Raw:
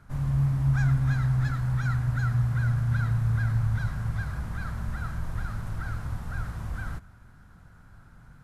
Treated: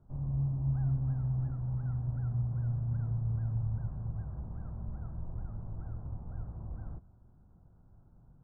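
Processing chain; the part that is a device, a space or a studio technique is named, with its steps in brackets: under water (low-pass 830 Hz 24 dB/octave; peaking EQ 360 Hz +4.5 dB 0.25 oct); trim -7.5 dB

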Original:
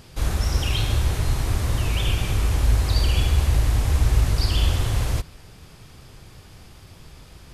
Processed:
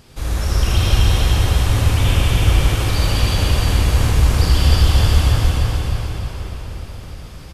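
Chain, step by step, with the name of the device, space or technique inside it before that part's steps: feedback delay 305 ms, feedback 49%, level -3.5 dB; cathedral (reverberation RT60 4.9 s, pre-delay 54 ms, DRR -5.5 dB); trim -1 dB

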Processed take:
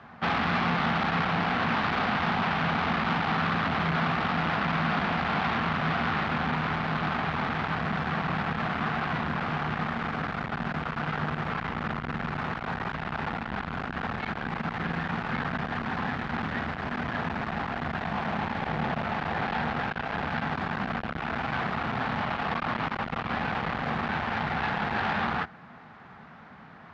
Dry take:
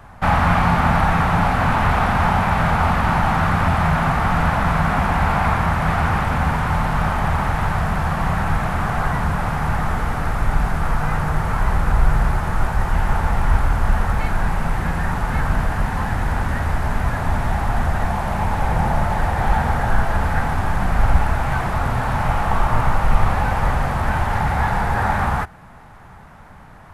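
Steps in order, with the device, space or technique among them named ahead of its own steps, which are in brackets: guitar amplifier (valve stage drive 21 dB, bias 0.5; tone controls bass -10 dB, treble +2 dB; cabinet simulation 87–4300 Hz, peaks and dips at 160 Hz +7 dB, 230 Hz +9 dB, 580 Hz -4 dB, 910 Hz -5 dB)

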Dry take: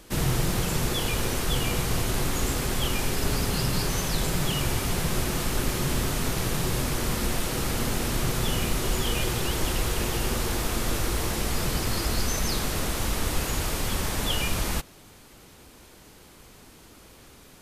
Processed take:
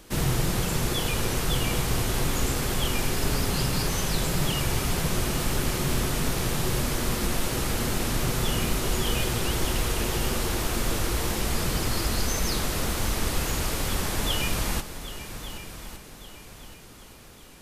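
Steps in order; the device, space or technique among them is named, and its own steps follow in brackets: multi-head tape echo (multi-head delay 388 ms, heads second and third, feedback 43%, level -14 dB; wow and flutter 19 cents)

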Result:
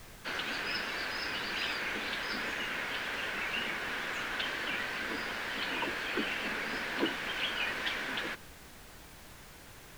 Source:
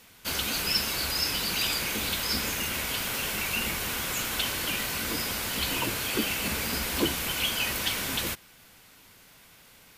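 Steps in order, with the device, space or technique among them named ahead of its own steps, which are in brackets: horn gramophone (band-pass 270–3000 Hz; peaking EQ 1.7 kHz +8 dB 0.36 oct; wow and flutter; pink noise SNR 15 dB); trim -3.5 dB

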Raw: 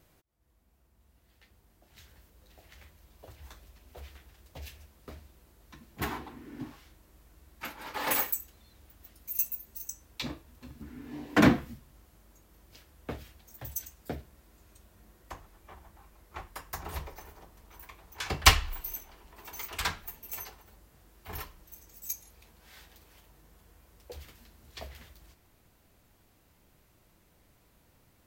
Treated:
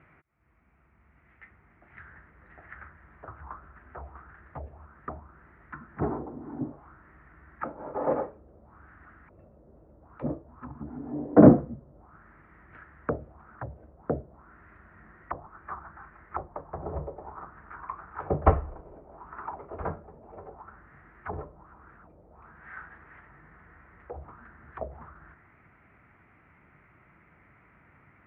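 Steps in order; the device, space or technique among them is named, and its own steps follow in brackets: envelope filter bass rig (touch-sensitive low-pass 550–2500 Hz down, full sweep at -40 dBFS; cabinet simulation 67–2100 Hz, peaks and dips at 150 Hz +4 dB, 520 Hz -5 dB, 1.3 kHz +7 dB); trim +5 dB

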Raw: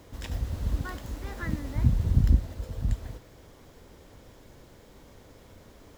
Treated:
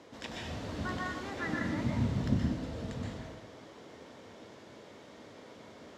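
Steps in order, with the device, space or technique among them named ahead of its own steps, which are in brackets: supermarket ceiling speaker (band-pass 230–5600 Hz; reverberation RT60 0.95 s, pre-delay 117 ms, DRR -1.5 dB)

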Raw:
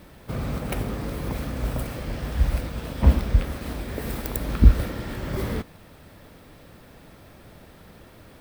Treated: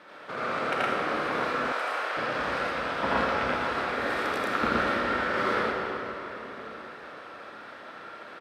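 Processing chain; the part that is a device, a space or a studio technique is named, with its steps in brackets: station announcement (band-pass 480–4000 Hz; peaking EQ 1.4 kHz +9 dB 0.59 oct; loudspeakers at several distances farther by 28 m 0 dB, 39 m -1 dB; reverberation RT60 4.0 s, pre-delay 36 ms, DRR 0.5 dB); 1.72–2.17 s: high-pass 580 Hz 12 dB/octave

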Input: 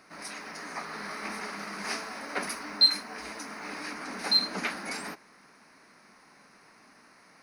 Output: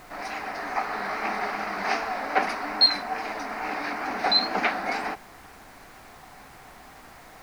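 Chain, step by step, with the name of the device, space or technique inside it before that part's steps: horn gramophone (band-pass 240–3400 Hz; peaking EQ 750 Hz +11 dB 0.32 oct; wow and flutter; pink noise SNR 23 dB); trim +7 dB

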